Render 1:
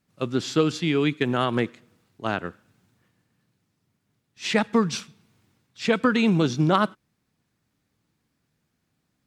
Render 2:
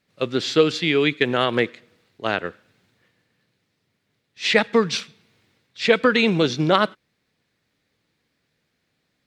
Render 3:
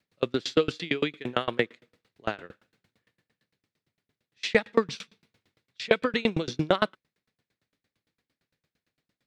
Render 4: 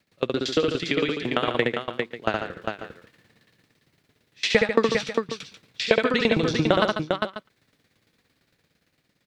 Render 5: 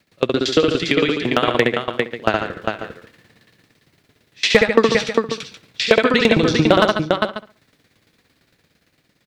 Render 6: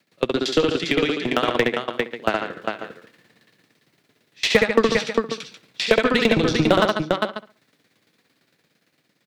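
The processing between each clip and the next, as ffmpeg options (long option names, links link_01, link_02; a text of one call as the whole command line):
ffmpeg -i in.wav -af "equalizer=frequency=500:width_type=o:width=1:gain=9,equalizer=frequency=2000:width_type=o:width=1:gain=9,equalizer=frequency=4000:width_type=o:width=1:gain=9,volume=-2.5dB" out.wav
ffmpeg -i in.wav -af "aeval=exprs='val(0)*pow(10,-30*if(lt(mod(8.8*n/s,1),2*abs(8.8)/1000),1-mod(8.8*n/s,1)/(2*abs(8.8)/1000),(mod(8.8*n/s,1)-2*abs(8.8)/1000)/(1-2*abs(8.8)/1000))/20)':channel_layout=same" out.wav
ffmpeg -i in.wav -af "dynaudnorm=framelen=680:gausssize=5:maxgain=11.5dB,aecho=1:1:68|143|401|540:0.668|0.316|0.473|0.119,acompressor=threshold=-40dB:ratio=1.5,volume=7.5dB" out.wav
ffmpeg -i in.wav -filter_complex "[0:a]asoftclip=type=hard:threshold=-8.5dB,asplit=2[link_01][link_02];[link_02]adelay=65,lowpass=frequency=2000:poles=1,volume=-15dB,asplit=2[link_03][link_04];[link_04]adelay=65,lowpass=frequency=2000:poles=1,volume=0.33,asplit=2[link_05][link_06];[link_06]adelay=65,lowpass=frequency=2000:poles=1,volume=0.33[link_07];[link_01][link_03][link_05][link_07]amix=inputs=4:normalize=0,volume=7dB" out.wav
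ffmpeg -i in.wav -filter_complex "[0:a]aeval=exprs='0.891*(cos(1*acos(clip(val(0)/0.891,-1,1)))-cos(1*PI/2))+0.0316*(cos(8*acos(clip(val(0)/0.891,-1,1)))-cos(8*PI/2))':channel_layout=same,acrossover=split=120|1500[link_01][link_02][link_03];[link_01]acrusher=bits=4:mix=0:aa=0.5[link_04];[link_04][link_02][link_03]amix=inputs=3:normalize=0,volume=-3.5dB" out.wav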